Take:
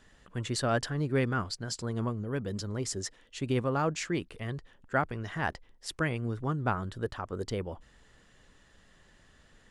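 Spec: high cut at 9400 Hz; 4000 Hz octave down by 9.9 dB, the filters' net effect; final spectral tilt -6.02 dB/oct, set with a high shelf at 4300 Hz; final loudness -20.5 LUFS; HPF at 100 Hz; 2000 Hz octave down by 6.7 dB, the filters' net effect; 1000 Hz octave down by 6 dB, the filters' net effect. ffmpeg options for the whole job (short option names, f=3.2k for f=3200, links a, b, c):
-af "highpass=100,lowpass=9.4k,equalizer=f=1k:t=o:g=-6.5,equalizer=f=2k:t=o:g=-3.5,equalizer=f=4k:t=o:g=-6.5,highshelf=f=4.3k:g=-8,volume=15dB"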